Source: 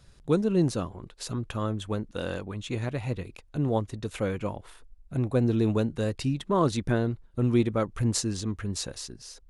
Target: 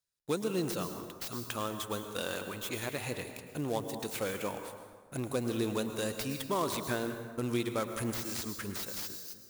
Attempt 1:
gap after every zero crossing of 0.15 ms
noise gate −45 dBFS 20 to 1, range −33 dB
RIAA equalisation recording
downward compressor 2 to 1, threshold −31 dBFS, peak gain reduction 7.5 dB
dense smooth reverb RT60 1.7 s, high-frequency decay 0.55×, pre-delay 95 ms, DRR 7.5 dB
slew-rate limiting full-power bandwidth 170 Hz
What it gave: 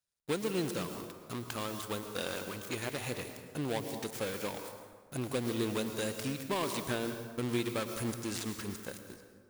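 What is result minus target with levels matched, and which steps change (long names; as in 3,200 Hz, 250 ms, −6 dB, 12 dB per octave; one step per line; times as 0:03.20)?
gap after every zero crossing: distortion +5 dB
change: gap after every zero crossing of 0.035 ms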